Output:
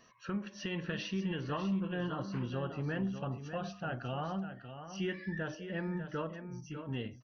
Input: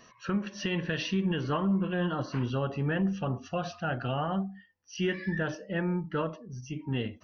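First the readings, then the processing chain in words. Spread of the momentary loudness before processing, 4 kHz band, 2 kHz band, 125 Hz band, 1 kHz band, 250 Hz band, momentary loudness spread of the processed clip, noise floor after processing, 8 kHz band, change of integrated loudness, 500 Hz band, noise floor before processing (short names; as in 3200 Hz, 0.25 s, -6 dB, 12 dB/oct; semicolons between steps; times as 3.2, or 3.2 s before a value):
6 LU, -6.5 dB, -6.5 dB, -6.5 dB, -6.5 dB, -6.5 dB, 6 LU, -55 dBFS, n/a, -6.5 dB, -6.5 dB, -59 dBFS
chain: echo 0.597 s -9.5 dB; gain -7 dB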